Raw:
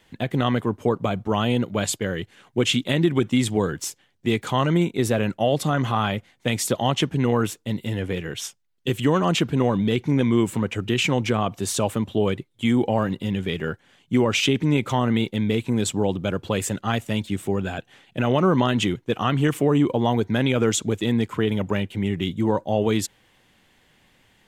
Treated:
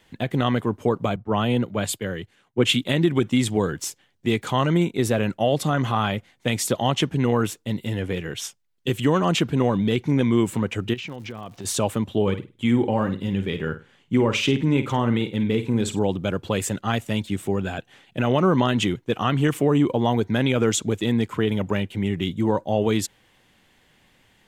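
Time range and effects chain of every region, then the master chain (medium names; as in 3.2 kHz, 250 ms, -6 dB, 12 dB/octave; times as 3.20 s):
1.16–2.85 s: dynamic bell 5.9 kHz, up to -8 dB, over -41 dBFS, Q 1.4 + three bands expanded up and down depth 70%
10.93–11.64 s: low-pass 5.8 kHz 24 dB/octave + compression 4:1, threshold -33 dBFS + crackle 200 per s -43 dBFS
12.22–15.99 s: treble shelf 3.7 kHz -6.5 dB + band-stop 680 Hz, Q 7.1 + flutter echo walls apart 8.7 m, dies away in 0.28 s
whole clip: none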